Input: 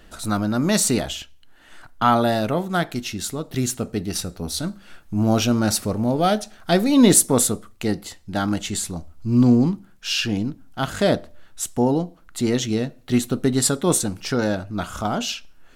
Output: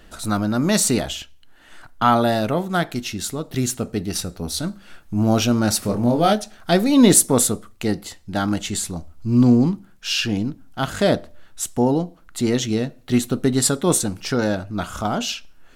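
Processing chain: 5.81–6.33 s: doubling 25 ms -5.5 dB; trim +1 dB

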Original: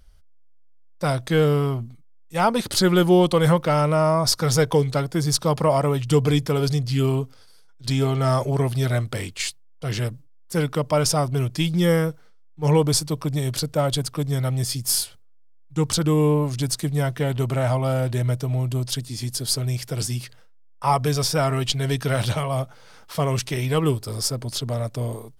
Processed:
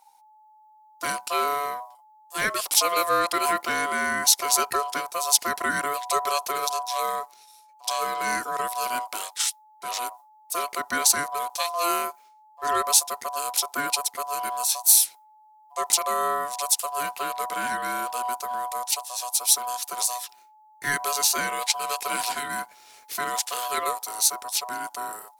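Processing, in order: ring modulator 860 Hz; RIAA curve recording; trim -3.5 dB

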